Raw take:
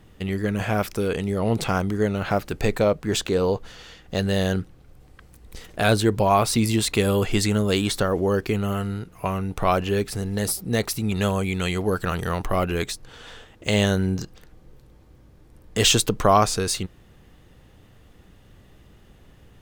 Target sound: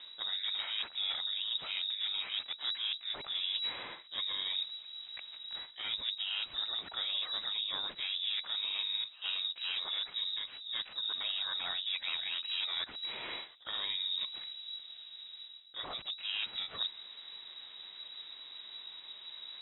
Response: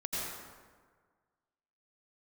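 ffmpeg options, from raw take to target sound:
-filter_complex "[0:a]aemphasis=mode=production:type=cd,areverse,acompressor=threshold=0.02:ratio=20,areverse,aeval=exprs='clip(val(0),-1,0.0158)':c=same,asplit=3[s0][s1][s2];[s1]asetrate=52444,aresample=44100,atempo=0.840896,volume=0.631[s3];[s2]asetrate=55563,aresample=44100,atempo=0.793701,volume=0.447[s4];[s0][s3][s4]amix=inputs=3:normalize=0,lowpass=f=3300:t=q:w=0.5098,lowpass=f=3300:t=q:w=0.6013,lowpass=f=3300:t=q:w=0.9,lowpass=f=3300:t=q:w=2.563,afreqshift=-3900"

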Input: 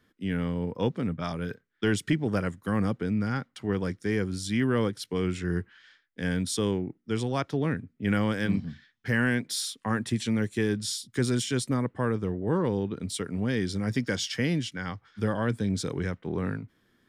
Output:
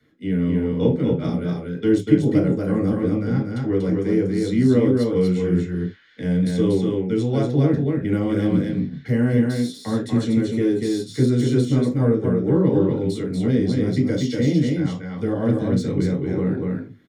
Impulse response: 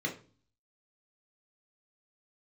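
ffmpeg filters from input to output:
-filter_complex "[0:a]deesser=0.7,aecho=1:1:239:0.668[s0];[1:a]atrim=start_sample=2205,atrim=end_sample=3969[s1];[s0][s1]afir=irnorm=-1:irlink=0,acrossover=split=110|980|3800[s2][s3][s4][s5];[s4]acompressor=threshold=0.00501:ratio=4[s6];[s2][s3][s6][s5]amix=inputs=4:normalize=0"

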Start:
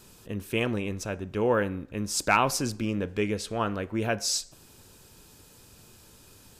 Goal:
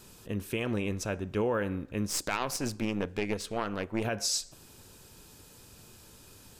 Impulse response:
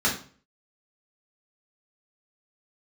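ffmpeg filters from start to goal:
-filter_complex "[0:a]alimiter=limit=0.0944:level=0:latency=1:release=124,asettb=1/sr,asplit=3[s0][s1][s2];[s0]atrim=end=2.074[s3];[s1]atrim=start=2.07:end=4.05,asetpts=PTS-STARTPTS,afade=t=in:d=0.004:c=qsin,afade=t=out:st=1.976:d=0.004:c=qsin,aeval=exprs='0.0944*(cos(1*acos(clip(val(0)/0.0944,-1,1)))-cos(1*PI/2))+0.0237*(cos(2*acos(clip(val(0)/0.0944,-1,1)))-cos(2*PI/2))+0.0106*(cos(3*acos(clip(val(0)/0.0944,-1,1)))-cos(3*PI/2))':c=same[s4];[s2]atrim=start=4.046[s5];[s3][s4]acrossfade=d=0.004:c1=hsin:c2=qsin[s6];[s6][s5]acrossfade=d=0.004:c1=qsin:c2=hsin"

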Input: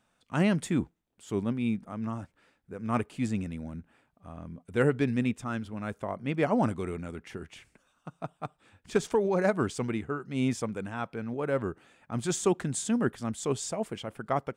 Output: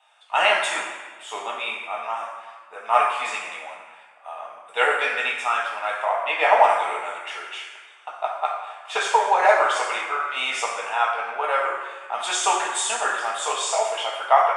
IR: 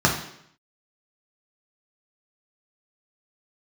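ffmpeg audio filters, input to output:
-filter_complex "[0:a]highpass=f=880:w=0.5412,highpass=f=880:w=1.3066,acontrast=34[s0];[1:a]atrim=start_sample=2205,asetrate=22050,aresample=44100[s1];[s0][s1]afir=irnorm=-1:irlink=0,volume=0.376"

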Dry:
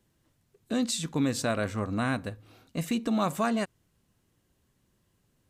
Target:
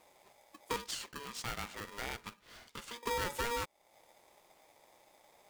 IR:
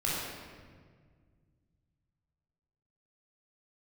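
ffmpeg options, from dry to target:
-filter_complex "[0:a]acompressor=threshold=0.00562:ratio=3,asettb=1/sr,asplit=3[s0][s1][s2];[s0]atrim=end=0.764[s3];[s1]atrim=start=0.76:end=3.03,asetpts=PTS-STARTPTS,afade=t=in:d=0.004:c=qsin,afade=t=out:st=2.266:d=0.004:c=qsin,highpass=610,lowpass=6400[s4];[s2]atrim=start=3.026[s5];[s3][s4]acrossfade=d=0.004:c1=hsin:c2=qsin[s6];[s6][s5]acrossfade=d=0.004:c1=qsin:c2=hsin,aeval=exprs='val(0)*sgn(sin(2*PI*710*n/s))':c=same,volume=2.11"

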